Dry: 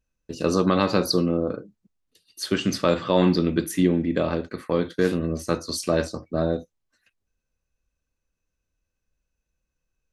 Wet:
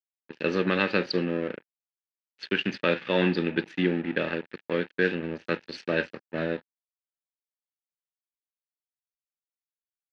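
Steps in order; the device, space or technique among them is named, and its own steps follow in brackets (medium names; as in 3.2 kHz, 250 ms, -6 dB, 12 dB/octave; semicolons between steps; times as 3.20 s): blown loudspeaker (crossover distortion -33.5 dBFS; cabinet simulation 190–4000 Hz, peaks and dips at 280 Hz -4 dB, 690 Hz -8 dB, 1.1 kHz -9 dB, 1.7 kHz +10 dB, 2.6 kHz +9 dB); trim -1 dB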